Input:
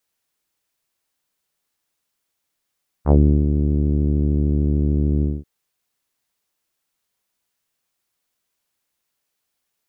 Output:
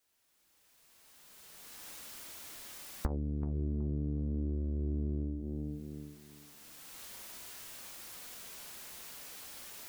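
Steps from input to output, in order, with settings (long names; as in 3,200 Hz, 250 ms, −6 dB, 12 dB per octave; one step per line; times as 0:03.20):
camcorder AGC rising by 16 dB per second
on a send: tape delay 372 ms, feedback 31%, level −9.5 dB, low-pass 1,100 Hz
on the sum: downward compressor 16 to 1, threshold −30 dBFS, peak gain reduction 23.5 dB
flanger 0.4 Hz, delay 2.8 ms, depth 2.1 ms, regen −64%
level +3 dB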